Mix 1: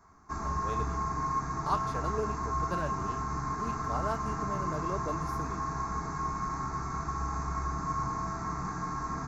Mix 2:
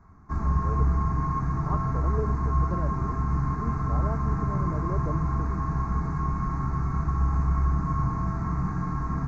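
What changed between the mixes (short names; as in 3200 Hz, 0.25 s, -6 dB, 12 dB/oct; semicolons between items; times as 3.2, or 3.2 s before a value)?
speech: add band-pass 400 Hz, Q 0.84; master: add tone controls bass +13 dB, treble -13 dB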